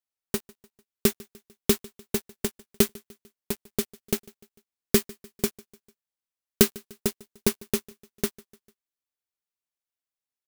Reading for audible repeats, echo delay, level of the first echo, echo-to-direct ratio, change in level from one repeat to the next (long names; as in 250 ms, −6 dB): 2, 149 ms, −23.5 dB, −22.5 dB, −6.0 dB